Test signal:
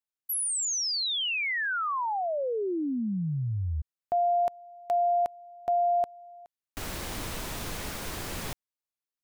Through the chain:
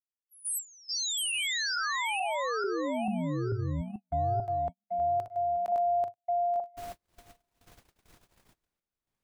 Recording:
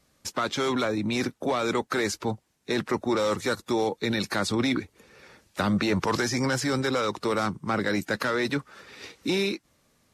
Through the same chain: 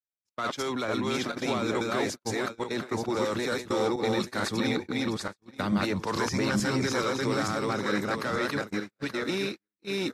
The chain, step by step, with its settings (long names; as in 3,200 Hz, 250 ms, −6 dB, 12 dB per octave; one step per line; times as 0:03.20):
feedback delay that plays each chunk backwards 440 ms, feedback 46%, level 0 dB
noise gate −27 dBFS, range −48 dB
level −5 dB